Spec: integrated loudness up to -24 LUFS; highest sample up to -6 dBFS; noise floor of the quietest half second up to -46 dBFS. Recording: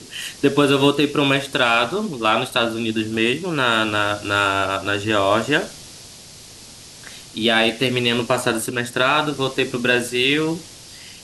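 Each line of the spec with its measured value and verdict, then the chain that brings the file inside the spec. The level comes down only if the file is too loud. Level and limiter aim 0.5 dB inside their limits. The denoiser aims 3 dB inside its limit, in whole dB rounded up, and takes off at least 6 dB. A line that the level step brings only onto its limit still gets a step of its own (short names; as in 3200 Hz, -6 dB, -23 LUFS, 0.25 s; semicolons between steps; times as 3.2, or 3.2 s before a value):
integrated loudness -19.0 LUFS: fail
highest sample -4.5 dBFS: fail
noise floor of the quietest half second -41 dBFS: fail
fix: gain -5.5 dB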